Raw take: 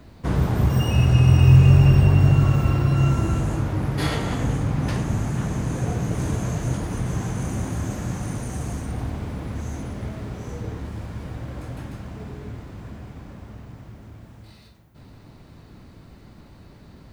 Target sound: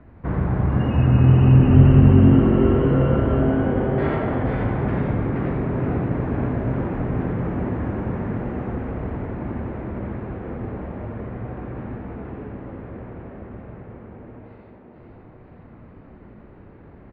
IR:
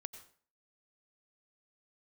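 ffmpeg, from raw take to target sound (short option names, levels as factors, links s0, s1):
-filter_complex "[0:a]lowpass=f=2100:w=0.5412,lowpass=f=2100:w=1.3066,asplit=7[s0][s1][s2][s3][s4][s5][s6];[s1]adelay=474,afreqshift=130,volume=0.562[s7];[s2]adelay=948,afreqshift=260,volume=0.288[s8];[s3]adelay=1422,afreqshift=390,volume=0.146[s9];[s4]adelay=1896,afreqshift=520,volume=0.075[s10];[s5]adelay=2370,afreqshift=650,volume=0.038[s11];[s6]adelay=2844,afreqshift=780,volume=0.0195[s12];[s0][s7][s8][s9][s10][s11][s12]amix=inputs=7:normalize=0,asplit=2[s13][s14];[1:a]atrim=start_sample=2205,asetrate=29547,aresample=44100,adelay=86[s15];[s14][s15]afir=irnorm=-1:irlink=0,volume=0.708[s16];[s13][s16]amix=inputs=2:normalize=0,volume=0.841"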